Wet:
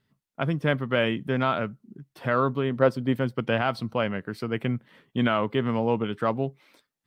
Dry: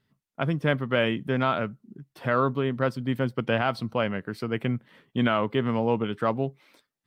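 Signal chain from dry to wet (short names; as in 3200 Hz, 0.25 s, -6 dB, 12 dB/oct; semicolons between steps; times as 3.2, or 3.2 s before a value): 2.7–3.16 dynamic EQ 510 Hz, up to +7 dB, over -37 dBFS, Q 0.77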